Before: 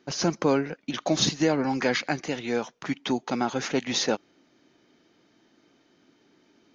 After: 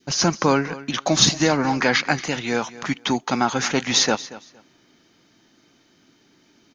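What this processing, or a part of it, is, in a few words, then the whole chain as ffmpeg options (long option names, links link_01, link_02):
smiley-face EQ: -filter_complex "[0:a]asettb=1/sr,asplit=3[link_01][link_02][link_03];[link_01]atrim=end=1.564[link_04];[link_02]atrim=start=1.56:end=2.05,asetpts=PTS-STARTPTS,afade=type=in:duration=0.004:curve=qsin,afade=type=out:start_time=0.486:duration=0.004:curve=qsin,lowpass=6000[link_05];[link_03]atrim=start=2.046[link_06];[link_04][link_05]acrossfade=duration=0.004:curve1=hsin:curve2=qsin[link_07];[link_07][link_06]acrossfade=duration=0.004:curve1=qsin:curve2=hsin,lowshelf=frequency=170:gain=5,equalizer=frequency=450:width_type=o:width=1.8:gain=-4.5,highshelf=frequency=5300:gain=9,adynamicequalizer=threshold=0.01:dfrequency=1100:dqfactor=0.85:tfrequency=1100:tqfactor=0.85:attack=5:release=100:ratio=0.375:range=3:mode=boostabove:tftype=bell,aecho=1:1:231|462:0.133|0.0267,volume=4.5dB"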